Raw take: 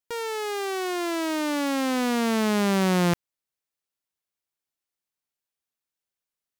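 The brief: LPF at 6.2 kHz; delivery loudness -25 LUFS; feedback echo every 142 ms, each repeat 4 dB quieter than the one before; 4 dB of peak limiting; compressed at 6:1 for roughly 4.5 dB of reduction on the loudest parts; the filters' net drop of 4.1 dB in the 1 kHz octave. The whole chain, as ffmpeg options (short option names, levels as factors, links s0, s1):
-af "lowpass=6200,equalizer=f=1000:t=o:g=-5.5,acompressor=threshold=0.0562:ratio=6,alimiter=level_in=1.26:limit=0.0631:level=0:latency=1,volume=0.794,aecho=1:1:142|284|426|568|710|852|994|1136|1278:0.631|0.398|0.25|0.158|0.0994|0.0626|0.0394|0.0249|0.0157,volume=1.78"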